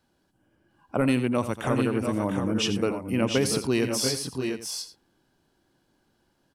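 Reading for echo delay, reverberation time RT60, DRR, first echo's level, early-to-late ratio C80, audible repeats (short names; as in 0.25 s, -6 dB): 86 ms, none, none, -12.0 dB, none, 3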